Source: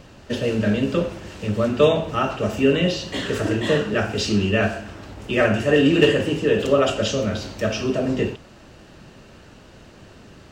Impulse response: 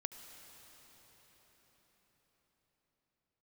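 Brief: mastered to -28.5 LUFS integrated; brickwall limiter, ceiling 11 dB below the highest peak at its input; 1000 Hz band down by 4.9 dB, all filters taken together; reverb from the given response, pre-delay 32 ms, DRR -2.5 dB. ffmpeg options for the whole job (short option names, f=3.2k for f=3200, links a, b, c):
-filter_complex "[0:a]equalizer=f=1k:t=o:g=-7.5,alimiter=limit=-15dB:level=0:latency=1,asplit=2[a][b];[1:a]atrim=start_sample=2205,adelay=32[c];[b][c]afir=irnorm=-1:irlink=0,volume=4.5dB[d];[a][d]amix=inputs=2:normalize=0,volume=-7.5dB"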